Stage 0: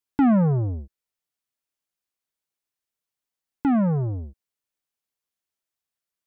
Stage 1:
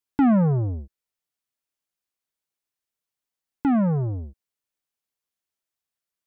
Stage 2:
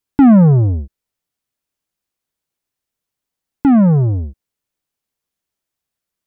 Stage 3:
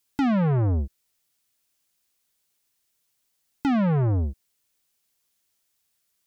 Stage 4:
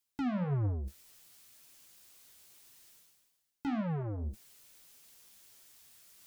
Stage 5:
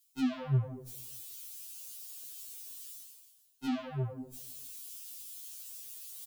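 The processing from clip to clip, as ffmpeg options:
ffmpeg -i in.wav -af anull out.wav
ffmpeg -i in.wav -af "lowshelf=frequency=430:gain=7,volume=5dB" out.wav
ffmpeg -i in.wav -af "acompressor=threshold=-13dB:ratio=6,highshelf=frequency=2100:gain=10.5,asoftclip=type=tanh:threshold=-20dB" out.wav
ffmpeg -i in.wav -af "areverse,acompressor=mode=upward:threshold=-26dB:ratio=2.5,areverse,flanger=delay=7:depth=9.2:regen=36:speed=1.8:shape=sinusoidal,volume=-8dB" out.wav
ffmpeg -i in.wav -filter_complex "[0:a]asplit=2[link_01][link_02];[link_02]adelay=148,lowpass=frequency=2500:poles=1,volume=-19dB,asplit=2[link_03][link_04];[link_04]adelay=148,lowpass=frequency=2500:poles=1,volume=0.49,asplit=2[link_05][link_06];[link_06]adelay=148,lowpass=frequency=2500:poles=1,volume=0.49,asplit=2[link_07][link_08];[link_08]adelay=148,lowpass=frequency=2500:poles=1,volume=0.49[link_09];[link_01][link_03][link_05][link_07][link_09]amix=inputs=5:normalize=0,acrossover=split=690[link_10][link_11];[link_11]aexciter=amount=3.2:drive=5.4:freq=2700[link_12];[link_10][link_12]amix=inputs=2:normalize=0,afftfilt=real='re*2.45*eq(mod(b,6),0)':imag='im*2.45*eq(mod(b,6),0)':win_size=2048:overlap=0.75,volume=1dB" out.wav

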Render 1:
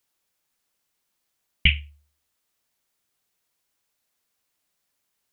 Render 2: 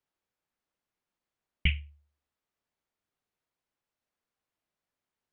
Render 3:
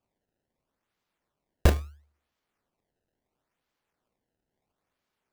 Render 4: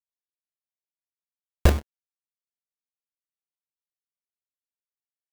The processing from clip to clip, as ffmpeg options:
ffmpeg -i in.wav -af "lowpass=frequency=1400:poles=1,volume=-4.5dB" out.wav
ffmpeg -i in.wav -af "acrusher=samples=22:mix=1:aa=0.000001:lfo=1:lforange=35.2:lforate=0.74,volume=6.5dB" out.wav
ffmpeg -i in.wav -af "acrusher=bits=4:mix=0:aa=0.5,volume=2.5dB" out.wav

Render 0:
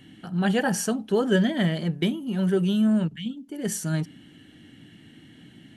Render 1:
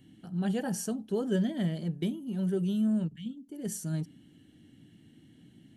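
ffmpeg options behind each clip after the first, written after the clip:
ffmpeg -i in.wav -af "equalizer=frequency=1700:width_type=o:width=2.8:gain=-10,volume=-5.5dB" out.wav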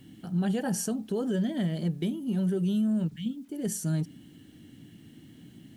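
ffmpeg -i in.wav -af "alimiter=level_in=3dB:limit=-24dB:level=0:latency=1:release=180,volume=-3dB,acrusher=bits=11:mix=0:aa=0.000001,volume=6dB" out.wav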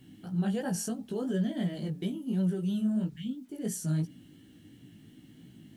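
ffmpeg -i in.wav -af "flanger=delay=15.5:depth=4.4:speed=2.9" out.wav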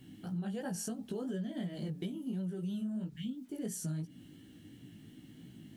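ffmpeg -i in.wav -af "acompressor=threshold=-35dB:ratio=6" out.wav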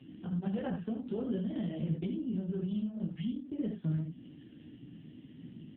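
ffmpeg -i in.wav -filter_complex "[0:a]asplit=2[link_01][link_02];[link_02]aecho=0:1:13|25|72:0.211|0.168|0.501[link_03];[link_01][link_03]amix=inputs=2:normalize=0,volume=3.5dB" -ar 8000 -c:a libopencore_amrnb -b:a 5900 out.amr

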